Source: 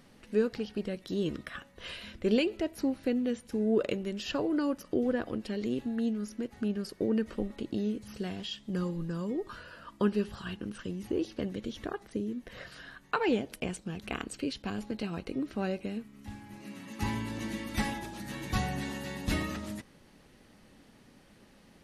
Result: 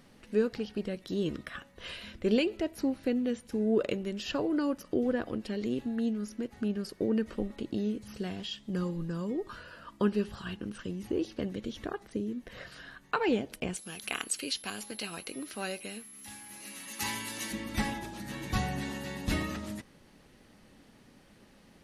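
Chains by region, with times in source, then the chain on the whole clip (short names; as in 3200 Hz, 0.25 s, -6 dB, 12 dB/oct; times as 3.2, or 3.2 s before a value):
13.75–17.51 tilt +4 dB/oct + whine 11000 Hz -48 dBFS
whole clip: dry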